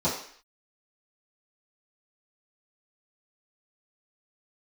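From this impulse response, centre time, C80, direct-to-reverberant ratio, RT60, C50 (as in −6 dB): 36 ms, 9.0 dB, −12.5 dB, 0.55 s, 5.5 dB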